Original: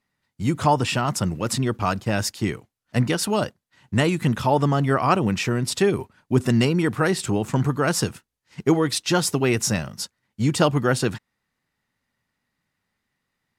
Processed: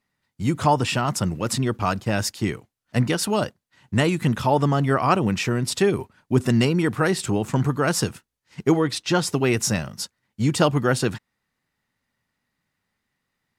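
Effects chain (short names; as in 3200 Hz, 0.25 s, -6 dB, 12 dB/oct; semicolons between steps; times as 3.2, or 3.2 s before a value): 8.81–9.32 high shelf 5700 Hz -> 9600 Hz -10 dB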